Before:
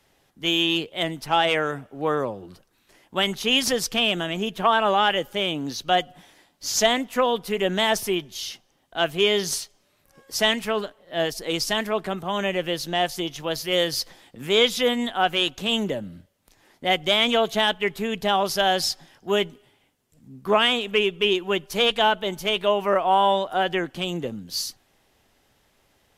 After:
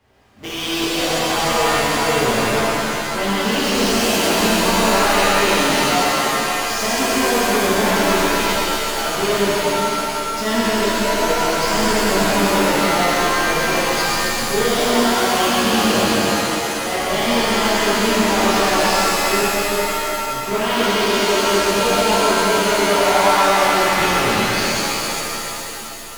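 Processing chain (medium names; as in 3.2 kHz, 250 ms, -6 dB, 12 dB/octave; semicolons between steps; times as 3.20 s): square wave that keeps the level; 9.35–10.37 s: distance through air 410 m; in parallel at +2.5 dB: compressor with a negative ratio -22 dBFS, ratio -0.5; on the sum: treble shelf 4.5 kHz -11 dB; comb of notches 170 Hz; on a send: feedback echo behind a high-pass 131 ms, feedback 76%, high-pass 1.5 kHz, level -5 dB; on the sum: pitch-shifted reverb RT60 3.2 s, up +7 st, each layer -2 dB, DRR -9 dB; trim -12 dB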